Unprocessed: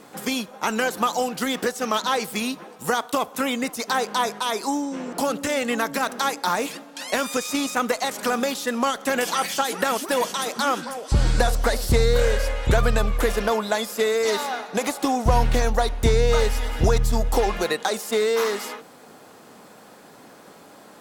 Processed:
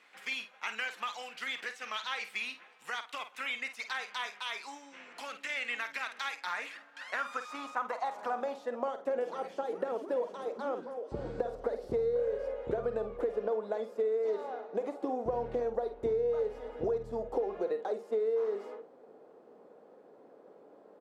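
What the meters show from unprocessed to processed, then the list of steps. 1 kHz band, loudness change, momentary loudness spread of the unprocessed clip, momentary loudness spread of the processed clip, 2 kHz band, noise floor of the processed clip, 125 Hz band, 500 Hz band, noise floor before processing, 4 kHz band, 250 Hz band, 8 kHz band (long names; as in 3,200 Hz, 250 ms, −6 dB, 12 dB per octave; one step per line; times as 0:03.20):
−14.0 dB, −12.0 dB, 6 LU, 8 LU, −10.5 dB, −58 dBFS, −25.0 dB, −8.5 dB, −47 dBFS, −14.5 dB, −17.5 dB, below −20 dB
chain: double-tracking delay 50 ms −10.5 dB
band-pass filter sweep 2,300 Hz → 460 Hz, 0:06.30–0:09.32
downward compressor 4 to 1, threshold −25 dBFS, peak gain reduction 6.5 dB
level −3.5 dB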